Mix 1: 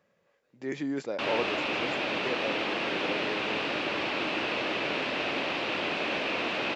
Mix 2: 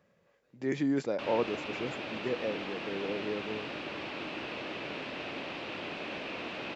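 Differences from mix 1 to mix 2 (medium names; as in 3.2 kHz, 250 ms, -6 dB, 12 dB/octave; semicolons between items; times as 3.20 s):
background -9.5 dB; master: add bass shelf 230 Hz +7.5 dB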